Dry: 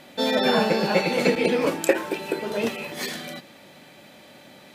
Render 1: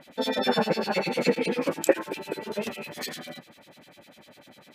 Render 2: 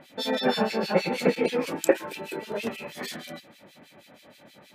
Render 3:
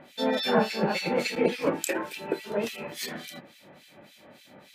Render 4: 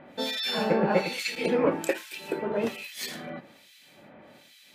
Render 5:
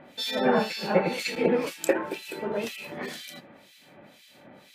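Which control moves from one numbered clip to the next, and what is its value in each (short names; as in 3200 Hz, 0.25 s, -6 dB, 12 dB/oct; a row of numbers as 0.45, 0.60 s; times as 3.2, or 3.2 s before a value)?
harmonic tremolo, rate: 10, 6.3, 3.5, 1.2, 2 Hz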